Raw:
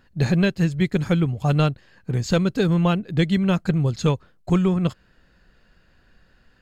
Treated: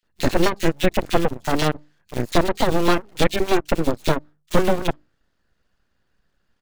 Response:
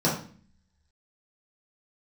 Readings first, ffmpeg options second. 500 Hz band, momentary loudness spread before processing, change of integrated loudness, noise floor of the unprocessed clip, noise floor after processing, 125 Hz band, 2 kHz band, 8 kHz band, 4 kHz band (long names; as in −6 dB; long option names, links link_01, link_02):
+4.0 dB, 5 LU, −0.5 dB, −59 dBFS, −70 dBFS, −8.0 dB, +3.5 dB, can't be measured, +4.5 dB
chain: -filter_complex "[0:a]asplit=2[link_01][link_02];[link_02]acrusher=bits=4:mode=log:mix=0:aa=0.000001,volume=-4.5dB[link_03];[link_01][link_03]amix=inputs=2:normalize=0,bandreject=frequency=50:width_type=h:width=6,bandreject=frequency=100:width_type=h:width=6,bandreject=frequency=150:width_type=h:width=6,bandreject=frequency=200:width_type=h:width=6,aeval=exprs='0.631*(cos(1*acos(clip(val(0)/0.631,-1,1)))-cos(1*PI/2))+0.0178*(cos(3*acos(clip(val(0)/0.631,-1,1)))-cos(3*PI/2))+0.0251*(cos(6*acos(clip(val(0)/0.631,-1,1)))-cos(6*PI/2))+0.1*(cos(7*acos(clip(val(0)/0.631,-1,1)))-cos(7*PI/2))':channel_layout=same,aeval=exprs='abs(val(0))':channel_layout=same,acrossover=split=2400[link_04][link_05];[link_04]adelay=30[link_06];[link_06][link_05]amix=inputs=2:normalize=0"